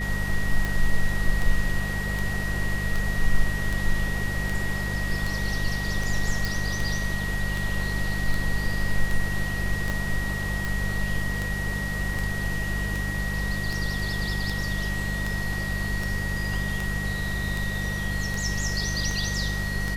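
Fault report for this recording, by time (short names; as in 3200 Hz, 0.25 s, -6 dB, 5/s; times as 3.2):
hum 50 Hz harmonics 4 -30 dBFS
tick 78 rpm
tone 1900 Hz -31 dBFS
6.45 pop
9.9 pop
12.14 gap 3.2 ms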